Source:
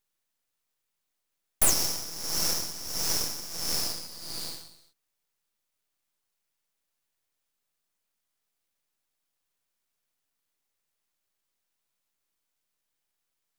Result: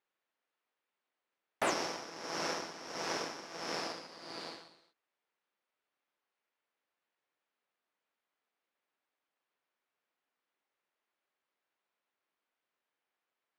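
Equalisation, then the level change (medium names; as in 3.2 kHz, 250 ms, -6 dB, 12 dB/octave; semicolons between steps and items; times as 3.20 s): band-pass 310–2300 Hz; +3.0 dB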